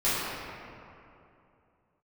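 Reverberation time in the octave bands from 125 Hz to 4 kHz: 2.9 s, 2.9 s, 2.9 s, 2.6 s, 2.2 s, 1.5 s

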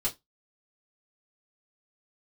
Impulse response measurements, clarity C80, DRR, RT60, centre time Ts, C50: 29.0 dB, -6.5 dB, 0.15 s, 13 ms, 19.5 dB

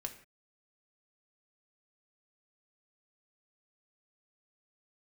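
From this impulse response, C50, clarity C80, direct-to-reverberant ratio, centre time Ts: 11.5 dB, 14.5 dB, 4.5 dB, 10 ms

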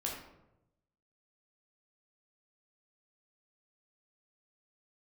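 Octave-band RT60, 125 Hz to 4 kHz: 1.3 s, 1.0 s, 1.0 s, 0.80 s, 0.65 s, 0.50 s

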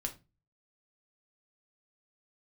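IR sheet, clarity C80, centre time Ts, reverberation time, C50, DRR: 21.5 dB, 9 ms, 0.25 s, 14.0 dB, 3.0 dB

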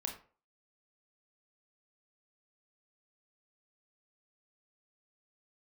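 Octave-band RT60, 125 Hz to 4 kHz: 0.35 s, 0.35 s, 0.45 s, 0.40 s, 0.35 s, 0.25 s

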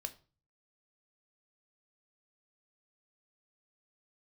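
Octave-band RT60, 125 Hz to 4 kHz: 0.70 s, 0.45 s, 0.35 s, 0.35 s, 0.30 s, 0.30 s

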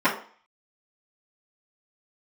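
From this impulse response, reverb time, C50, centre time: 0.45 s, 9.0 dB, 22 ms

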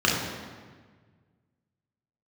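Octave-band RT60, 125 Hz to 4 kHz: 2.4 s, 1.9 s, 1.6 s, 1.5 s, 1.4 s, 1.1 s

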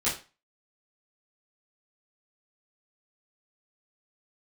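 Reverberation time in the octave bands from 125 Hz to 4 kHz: 0.30 s, 0.35 s, 0.30 s, 0.35 s, 0.30 s, 0.30 s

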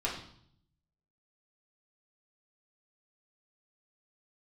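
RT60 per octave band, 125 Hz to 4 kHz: 1.2 s, 0.90 s, 0.65 s, 0.65 s, 0.55 s, 0.65 s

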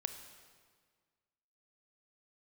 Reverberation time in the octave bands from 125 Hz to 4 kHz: 1.9 s, 1.9 s, 1.7 s, 1.7 s, 1.5 s, 1.4 s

